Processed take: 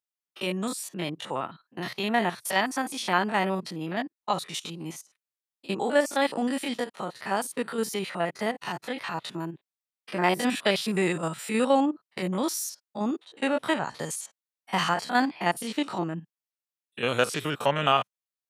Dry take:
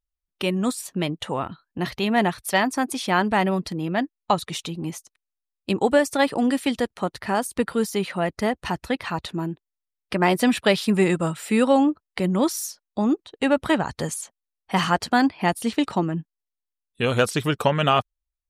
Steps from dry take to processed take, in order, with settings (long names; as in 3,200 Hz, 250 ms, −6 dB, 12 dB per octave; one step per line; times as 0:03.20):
spectrum averaged block by block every 50 ms
high-pass filter 120 Hz 24 dB per octave
low-shelf EQ 410 Hz −8.5 dB